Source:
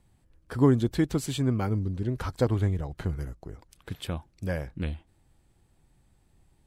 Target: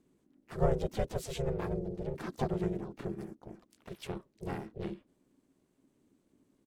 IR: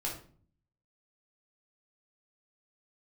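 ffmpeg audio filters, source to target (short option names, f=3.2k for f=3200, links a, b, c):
-filter_complex "[0:a]asplit=3[a][b][c];[b]asetrate=35002,aresample=44100,atempo=1.25992,volume=-3dB[d];[c]asetrate=66075,aresample=44100,atempo=0.66742,volume=-9dB[e];[a][d][e]amix=inputs=3:normalize=0,aeval=exprs='val(0)*sin(2*PI*270*n/s)':c=same,volume=-7dB"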